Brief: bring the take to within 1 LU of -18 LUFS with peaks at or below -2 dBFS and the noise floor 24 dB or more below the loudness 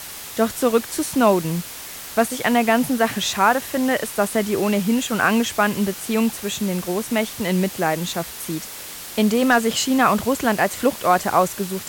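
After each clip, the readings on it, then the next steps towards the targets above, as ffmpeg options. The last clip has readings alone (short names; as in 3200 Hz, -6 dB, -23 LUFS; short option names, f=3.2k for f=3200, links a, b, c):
noise floor -35 dBFS; noise floor target -45 dBFS; loudness -20.5 LUFS; peak -3.5 dBFS; loudness target -18.0 LUFS
-> -af "afftdn=nr=10:nf=-35"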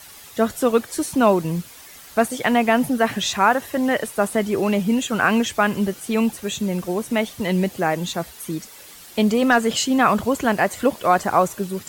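noise floor -43 dBFS; noise floor target -45 dBFS
-> -af "afftdn=nr=6:nf=-43"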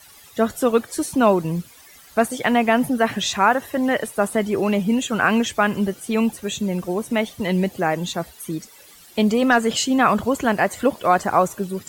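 noise floor -47 dBFS; loudness -20.5 LUFS; peak -3.5 dBFS; loudness target -18.0 LUFS
-> -af "volume=2.5dB,alimiter=limit=-2dB:level=0:latency=1"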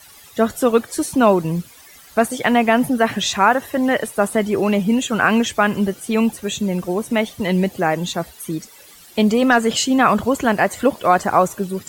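loudness -18.5 LUFS; peak -2.0 dBFS; noise floor -45 dBFS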